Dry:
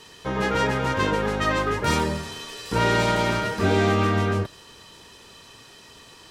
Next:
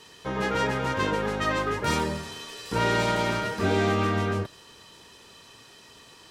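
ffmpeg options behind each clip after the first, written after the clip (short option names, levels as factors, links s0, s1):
-af "lowshelf=f=60:g=-6.5,volume=0.708"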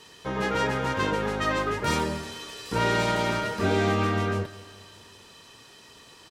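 -af "aecho=1:1:195|390|585|780|975:0.106|0.0593|0.0332|0.0186|0.0104"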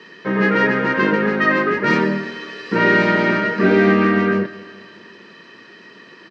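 -af "highpass=f=160:w=0.5412,highpass=f=160:w=1.3066,equalizer=f=200:t=q:w=4:g=8,equalizer=f=350:t=q:w=4:g=7,equalizer=f=810:t=q:w=4:g=-8,equalizer=f=1800:t=q:w=4:g=9,equalizer=f=3500:t=q:w=4:g=-10,lowpass=f=4200:w=0.5412,lowpass=f=4200:w=1.3066,volume=2.37"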